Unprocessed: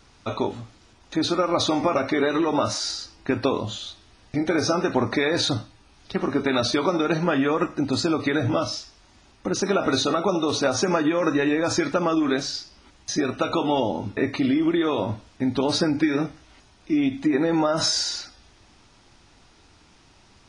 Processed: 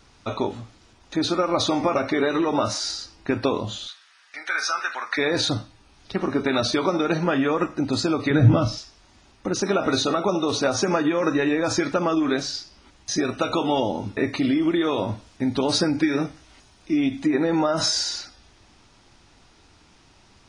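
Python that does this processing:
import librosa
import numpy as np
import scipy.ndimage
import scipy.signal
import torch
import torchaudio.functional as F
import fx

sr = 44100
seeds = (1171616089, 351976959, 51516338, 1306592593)

y = fx.highpass_res(x, sr, hz=1500.0, q=2.2, at=(3.87, 5.17), fade=0.02)
y = fx.bass_treble(y, sr, bass_db=13, treble_db=-5, at=(8.3, 8.78))
y = fx.high_shelf(y, sr, hz=6000.0, db=6.5, at=(13.11, 17.31))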